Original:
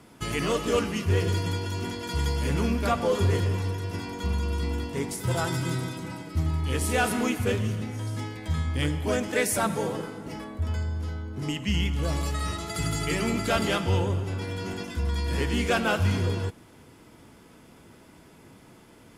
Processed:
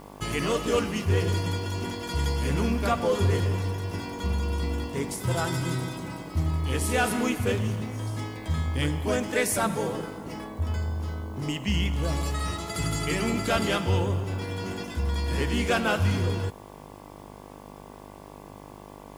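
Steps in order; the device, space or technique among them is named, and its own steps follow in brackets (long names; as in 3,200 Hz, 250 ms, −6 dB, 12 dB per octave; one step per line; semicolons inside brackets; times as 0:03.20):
video cassette with head-switching buzz (hum with harmonics 50 Hz, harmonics 23, −46 dBFS −1 dB per octave; white noise bed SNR 36 dB)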